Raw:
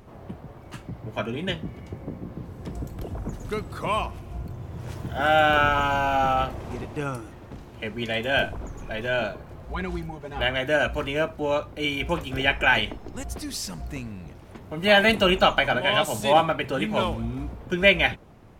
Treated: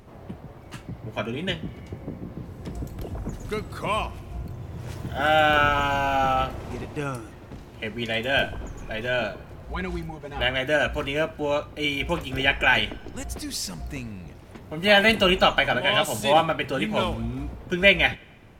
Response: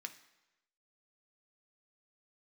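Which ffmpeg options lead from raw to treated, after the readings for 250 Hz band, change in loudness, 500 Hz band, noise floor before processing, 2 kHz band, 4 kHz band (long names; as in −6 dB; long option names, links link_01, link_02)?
0.0 dB, +0.5 dB, −0.5 dB, −45 dBFS, +0.5 dB, +1.5 dB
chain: -filter_complex "[0:a]asplit=2[link_01][link_02];[link_02]highpass=1300[link_03];[1:a]atrim=start_sample=2205,asetrate=32193,aresample=44100[link_04];[link_03][link_04]afir=irnorm=-1:irlink=0,volume=-9.5dB[link_05];[link_01][link_05]amix=inputs=2:normalize=0"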